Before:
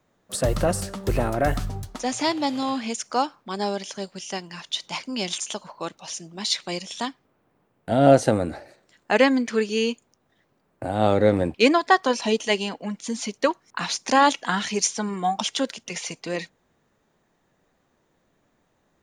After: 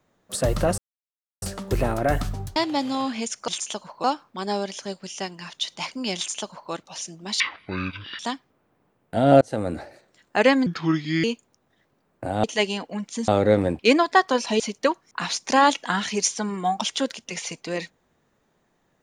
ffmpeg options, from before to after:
-filter_complex "[0:a]asplit=13[a][b][c][d][e][f][g][h][i][j][k][l][m];[a]atrim=end=0.78,asetpts=PTS-STARTPTS,afade=t=out:st=0.776:d=0.004:c=hsin,apad=pad_dur=0.64[n];[b]atrim=start=0.78:end=1.922,asetpts=PTS-STARTPTS,afade=t=in:d=0.004:c=hsin[o];[c]atrim=start=2.238:end=3.162[p];[d]atrim=start=5.278:end=5.842[q];[e]atrim=start=3.158:end=6.524[r];[f]atrim=start=6.52:end=6.94,asetpts=PTS-STARTPTS,asetrate=23373,aresample=44100,atrim=end_sample=34947,asetpts=PTS-STARTPTS[s];[g]atrim=start=6.936:end=8.16,asetpts=PTS-STARTPTS,afade=t=out:st=1.22:d=0.004:c=hsin[t];[h]atrim=start=8.16:end=9.414,asetpts=PTS-STARTPTS,afade=t=in:d=0.33[u];[i]atrim=start=9.41:end=9.83,asetpts=PTS-STARTPTS,asetrate=32193,aresample=44100[v];[j]atrim=start=9.826:end=11.032[w];[k]atrim=start=12.348:end=13.192[x];[l]atrim=start=11.028:end=12.352[y];[m]atrim=start=13.188[z];[n][o]concat=n=2:v=0:a=1[aa];[aa][p]acrossfade=d=0.004:c1=hsin:c2=hsin[ab];[ab][q]acrossfade=d=0.004:c1=hsin:c2=hsin[ac];[ac][r]acrossfade=d=0.004:c1=hsin:c2=hsin[ad];[ad][s]acrossfade=d=0.004:c1=hsin:c2=hsin[ae];[t][u]concat=n=2:v=0:a=1[af];[ae][af]acrossfade=d=0.004:c1=hsin:c2=hsin[ag];[ag][v]acrossfade=d=0.004:c1=hsin:c2=hsin[ah];[ah][w]acrossfade=d=0.004:c1=hsin:c2=hsin[ai];[ai][x]acrossfade=d=0.004:c1=hsin:c2=hsin[aj];[aj][y]acrossfade=d=0.004:c1=hsin:c2=hsin[ak];[ak][z]acrossfade=d=0.004:c1=hsin:c2=hsin"

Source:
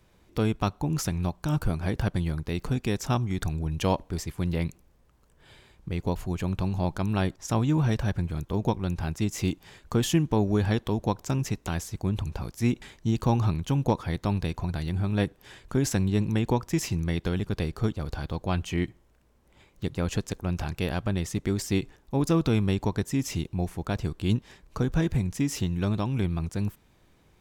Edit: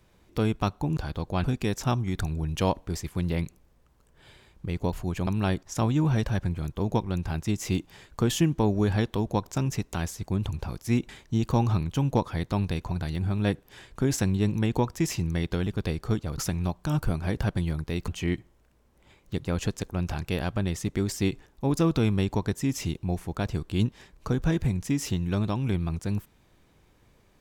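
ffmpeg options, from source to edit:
-filter_complex "[0:a]asplit=6[a][b][c][d][e][f];[a]atrim=end=0.972[g];[b]atrim=start=18.108:end=18.582[h];[c]atrim=start=2.668:end=6.502[i];[d]atrim=start=6.998:end=18.112[j];[e]atrim=start=0.968:end=2.672[k];[f]atrim=start=18.578[l];[g][h]acrossfade=d=0.004:c1=hsin:c2=hsin[m];[m][i]acrossfade=d=0.004:c1=hsin:c2=hsin[n];[n][j]acrossfade=d=0.004:c1=hsin:c2=hsin[o];[o][k]acrossfade=d=0.004:c1=hsin:c2=hsin[p];[p][l]acrossfade=d=0.004:c1=hsin:c2=hsin"

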